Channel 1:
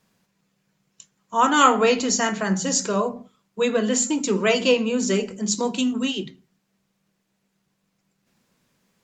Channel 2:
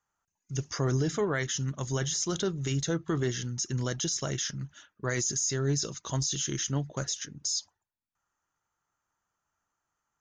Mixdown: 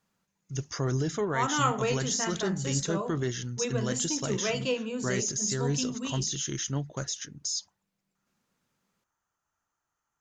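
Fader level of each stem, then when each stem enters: −11.0, −1.0 decibels; 0.00, 0.00 seconds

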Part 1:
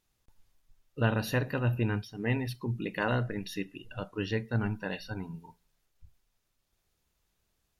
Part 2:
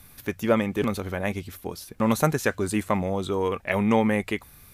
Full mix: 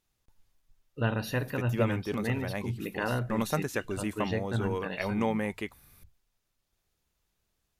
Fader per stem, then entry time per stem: −1.5, −8.0 decibels; 0.00, 1.30 seconds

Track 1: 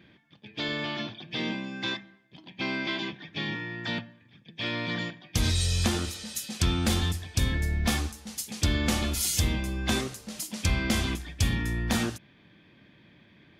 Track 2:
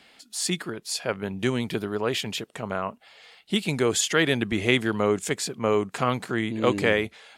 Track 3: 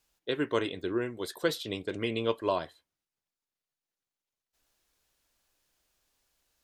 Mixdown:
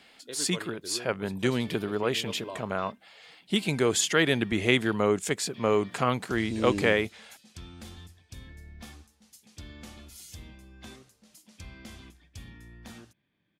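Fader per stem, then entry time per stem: −19.5, −1.5, −11.0 decibels; 0.95, 0.00, 0.00 seconds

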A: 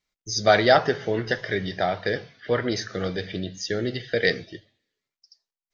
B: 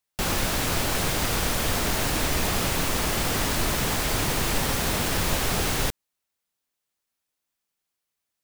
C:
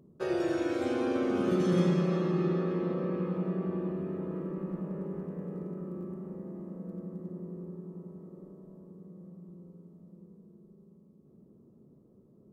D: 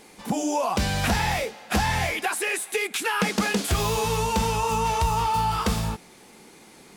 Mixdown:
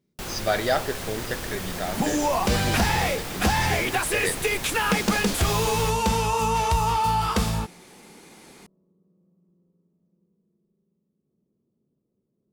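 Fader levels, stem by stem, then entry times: −6.5, −8.5, −16.0, +1.0 decibels; 0.00, 0.00, 0.00, 1.70 seconds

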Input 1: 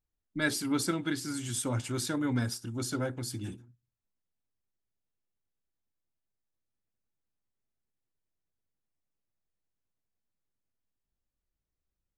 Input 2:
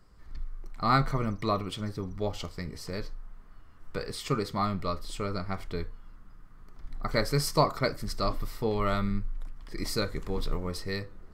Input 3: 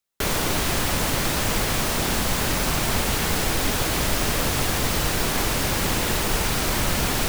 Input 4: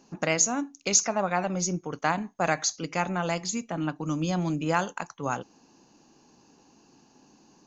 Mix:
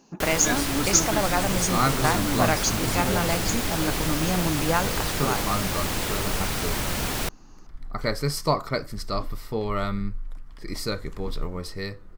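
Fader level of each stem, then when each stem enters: +1.5, +1.0, −4.5, +1.5 decibels; 0.05, 0.90, 0.00, 0.00 seconds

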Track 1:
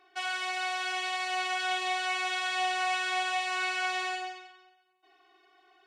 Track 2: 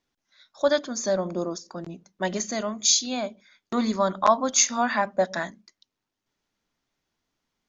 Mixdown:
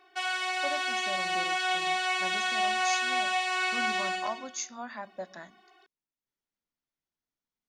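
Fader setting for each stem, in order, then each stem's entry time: +2.0, −16.0 decibels; 0.00, 0.00 seconds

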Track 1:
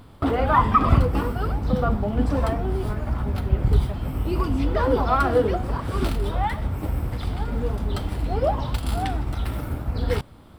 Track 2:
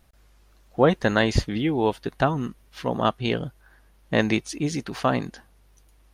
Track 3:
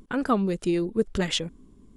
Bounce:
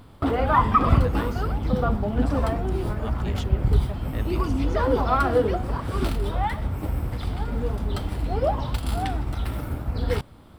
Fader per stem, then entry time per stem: −1.0, −17.0, −13.5 decibels; 0.00, 0.00, 2.05 seconds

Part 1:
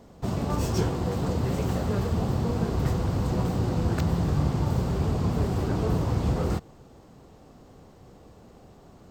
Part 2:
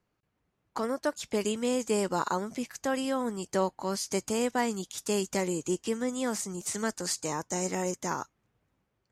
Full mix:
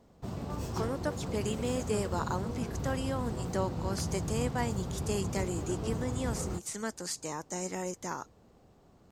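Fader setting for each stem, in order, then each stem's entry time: −10.0, −5.0 decibels; 0.00, 0.00 seconds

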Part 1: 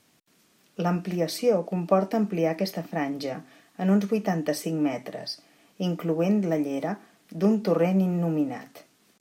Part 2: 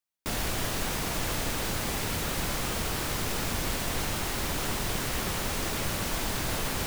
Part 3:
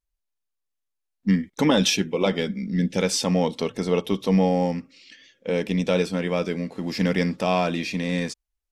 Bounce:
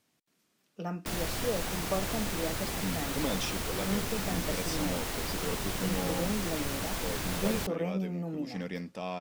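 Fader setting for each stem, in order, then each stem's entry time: −11.0, −4.0, −15.0 decibels; 0.00, 0.80, 1.55 seconds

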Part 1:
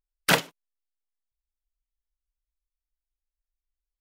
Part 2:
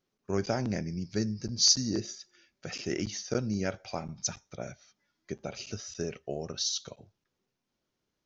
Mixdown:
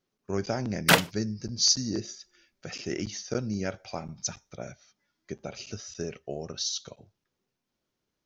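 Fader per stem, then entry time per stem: +1.5, 0.0 decibels; 0.60, 0.00 seconds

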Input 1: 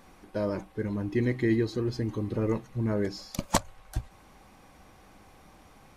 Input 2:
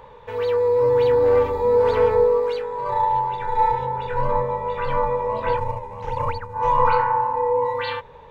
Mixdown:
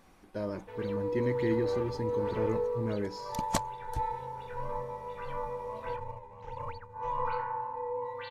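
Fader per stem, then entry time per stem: −5.5, −15.0 decibels; 0.00, 0.40 seconds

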